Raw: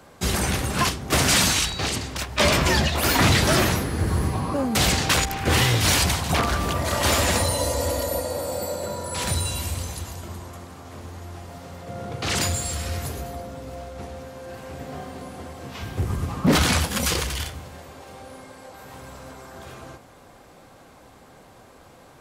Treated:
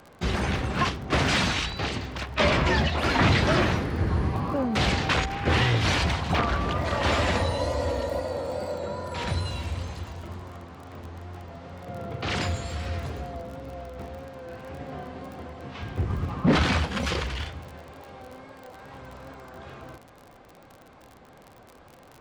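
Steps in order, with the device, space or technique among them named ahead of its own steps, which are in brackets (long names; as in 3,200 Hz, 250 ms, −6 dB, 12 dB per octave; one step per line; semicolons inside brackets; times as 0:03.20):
lo-fi chain (low-pass filter 3,400 Hz 12 dB per octave; tape wow and flutter; surface crackle 35 per second −34 dBFS)
level −2 dB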